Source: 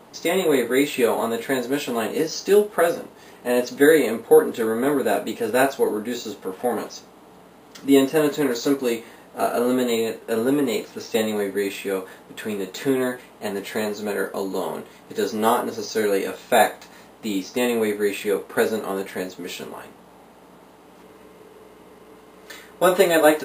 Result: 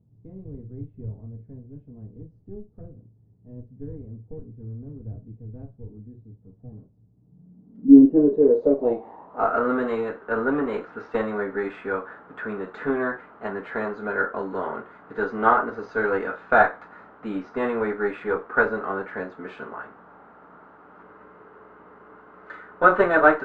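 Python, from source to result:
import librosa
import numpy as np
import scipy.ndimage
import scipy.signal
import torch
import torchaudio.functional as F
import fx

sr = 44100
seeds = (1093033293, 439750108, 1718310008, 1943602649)

y = fx.cheby_harmonics(x, sr, harmonics=(6, 7), levels_db=(-24, -42), full_scale_db=-2.0)
y = fx.filter_sweep_lowpass(y, sr, from_hz=110.0, to_hz=1400.0, start_s=7.08, end_s=9.6, q=5.0)
y = y * 10.0 ** (-4.0 / 20.0)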